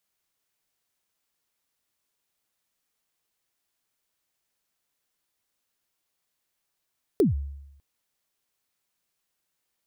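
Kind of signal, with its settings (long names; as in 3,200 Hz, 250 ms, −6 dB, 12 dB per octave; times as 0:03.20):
synth kick length 0.60 s, from 460 Hz, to 70 Hz, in 143 ms, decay 0.90 s, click on, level −14.5 dB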